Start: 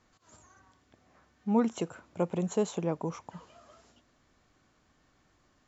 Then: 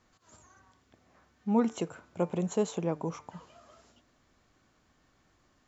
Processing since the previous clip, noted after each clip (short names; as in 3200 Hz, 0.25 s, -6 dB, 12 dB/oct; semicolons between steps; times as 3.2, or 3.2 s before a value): de-hum 148.7 Hz, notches 16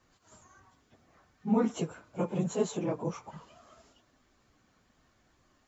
phase scrambler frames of 50 ms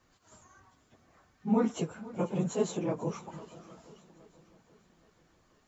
swung echo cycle 0.824 s, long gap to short 1.5:1, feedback 34%, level -18.5 dB